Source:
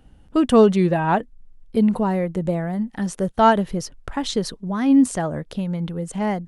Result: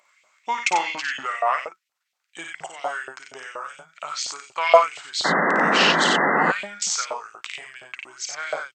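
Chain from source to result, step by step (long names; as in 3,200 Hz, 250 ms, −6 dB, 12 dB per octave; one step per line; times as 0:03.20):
tilt shelving filter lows −8.5 dB, about 1,100 Hz
on a send: ambience of single reflections 40 ms −5 dB, 68 ms −5 dB
on the sum: auto-filter high-pass saw up 5.7 Hz 860–3,800 Hz
sound drawn into the spectrogram noise, 0:03.88–0:04.83, 210–2,800 Hz −17 dBFS
wrong playback speed 45 rpm record played at 33 rpm
level −2.5 dB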